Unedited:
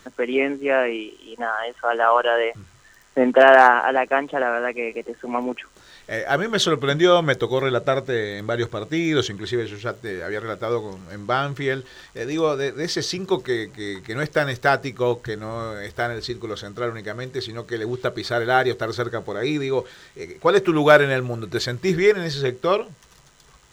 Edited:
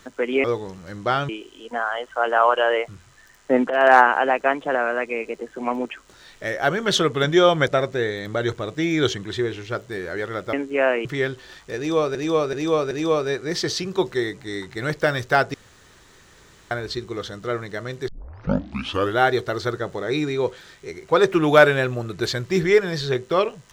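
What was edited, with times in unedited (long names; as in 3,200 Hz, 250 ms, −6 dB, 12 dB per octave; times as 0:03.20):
0:00.44–0:00.96: swap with 0:10.67–0:11.52
0:03.37–0:03.64: fade in, from −16 dB
0:07.35–0:07.82: remove
0:12.24–0:12.62: repeat, 4 plays
0:14.87–0:16.04: fill with room tone
0:17.41: tape start 1.13 s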